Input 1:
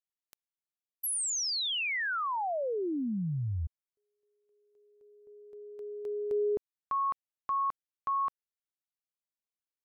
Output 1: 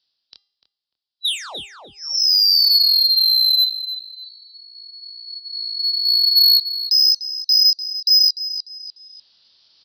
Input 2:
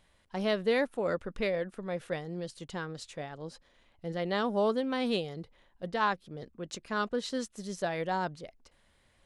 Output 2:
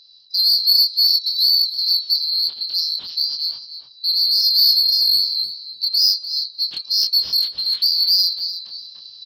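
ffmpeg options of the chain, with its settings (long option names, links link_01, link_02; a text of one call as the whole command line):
ffmpeg -i in.wav -filter_complex "[0:a]afftfilt=real='real(if(lt(b,736),b+184*(1-2*mod(floor(b/184),2)),b),0)':imag='imag(if(lt(b,736),b+184*(1-2*mod(floor(b/184),2)),b),0)':win_size=2048:overlap=0.75,acrossover=split=460|1700[link_01][link_02][link_03];[link_01]acompressor=threshold=-44dB:ratio=5:attack=35:release=85:knee=2.83:detection=peak[link_04];[link_04][link_02][link_03]amix=inputs=3:normalize=0,asplit=2[link_05][link_06];[link_06]alimiter=level_in=2.5dB:limit=-24dB:level=0:latency=1:release=300,volume=-2.5dB,volume=2dB[link_07];[link_05][link_07]amix=inputs=2:normalize=0,highpass=frequency=42:width=0.5412,highpass=frequency=42:width=1.3066,aresample=11025,aresample=44100,flanger=delay=22.5:depth=4:speed=1.1,asoftclip=type=tanh:threshold=-23.5dB,asplit=2[link_08][link_09];[link_09]adelay=297,lowpass=frequency=2500:poles=1,volume=-6dB,asplit=2[link_10][link_11];[link_11]adelay=297,lowpass=frequency=2500:poles=1,volume=0.25,asplit=2[link_12][link_13];[link_13]adelay=297,lowpass=frequency=2500:poles=1,volume=0.25[link_14];[link_08][link_10][link_12][link_14]amix=inputs=4:normalize=0,areverse,acompressor=mode=upward:threshold=-44dB:ratio=2.5:attack=83:release=959:knee=2.83:detection=peak,areverse,bandreject=frequency=402.6:width_type=h:width=4,bandreject=frequency=805.2:width_type=h:width=4,bandreject=frequency=1207.8:width_type=h:width=4,bandreject=frequency=1610.4:width_type=h:width=4,bandreject=frequency=2013:width_type=h:width=4,bandreject=frequency=2415.6:width_type=h:width=4,bandreject=frequency=2818.2:width_type=h:width=4,bandreject=frequency=3220.8:width_type=h:width=4,bandreject=frequency=3623.4:width_type=h:width=4,bandreject=frequency=4026:width_type=h:width=4,bandreject=frequency=4428.6:width_type=h:width=4,bandreject=frequency=4831.2:width_type=h:width=4,bandreject=frequency=5233.8:width_type=h:width=4,bandreject=frequency=5636.4:width_type=h:width=4,bandreject=frequency=6039:width_type=h:width=4,bandreject=frequency=6441.6:width_type=h:width=4,bandreject=frequency=6844.2:width_type=h:width=4,bandreject=frequency=7246.8:width_type=h:width=4,bandreject=frequency=7649.4:width_type=h:width=4,bandreject=frequency=8052:width_type=h:width=4,bandreject=frequency=8454.6:width_type=h:width=4,bandreject=frequency=8857.2:width_type=h:width=4,bandreject=frequency=9259.8:width_type=h:width=4,bandreject=frequency=9662.4:width_type=h:width=4,aexciter=amount=14.8:drive=1.8:freq=3300,volume=-5dB" out.wav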